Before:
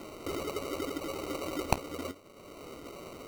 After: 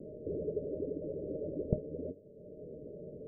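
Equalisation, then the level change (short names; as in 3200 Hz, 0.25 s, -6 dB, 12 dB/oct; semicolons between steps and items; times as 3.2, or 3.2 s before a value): rippled Chebyshev low-pass 630 Hz, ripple 9 dB; +5.0 dB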